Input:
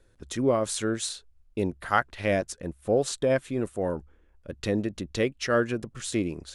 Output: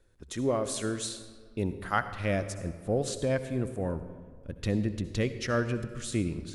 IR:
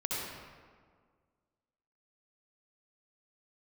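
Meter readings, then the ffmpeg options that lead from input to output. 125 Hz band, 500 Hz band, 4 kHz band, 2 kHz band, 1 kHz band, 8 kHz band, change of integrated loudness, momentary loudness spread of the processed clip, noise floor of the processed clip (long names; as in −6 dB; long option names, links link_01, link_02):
+2.0 dB, −5.0 dB, −4.0 dB, −4.0 dB, −4.5 dB, −3.5 dB, −3.5 dB, 9 LU, −53 dBFS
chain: -filter_complex "[0:a]asubboost=boost=2.5:cutoff=230,asplit=2[link_01][link_02];[1:a]atrim=start_sample=2205,highshelf=frequency=9000:gain=10.5[link_03];[link_02][link_03]afir=irnorm=-1:irlink=0,volume=-14.5dB[link_04];[link_01][link_04]amix=inputs=2:normalize=0,volume=-5.5dB"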